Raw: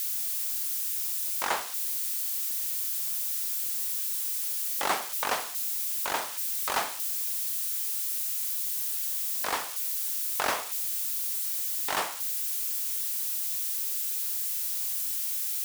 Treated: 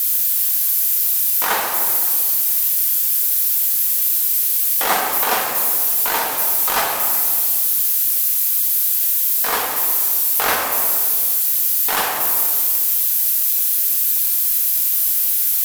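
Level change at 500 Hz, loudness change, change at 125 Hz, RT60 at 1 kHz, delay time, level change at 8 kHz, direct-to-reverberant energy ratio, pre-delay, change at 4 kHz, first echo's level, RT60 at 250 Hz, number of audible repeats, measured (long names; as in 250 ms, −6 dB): +11.0 dB, +13.5 dB, can't be measured, 1.8 s, no echo audible, +12.0 dB, −2.5 dB, 4 ms, +9.5 dB, no echo audible, 2.8 s, no echo audible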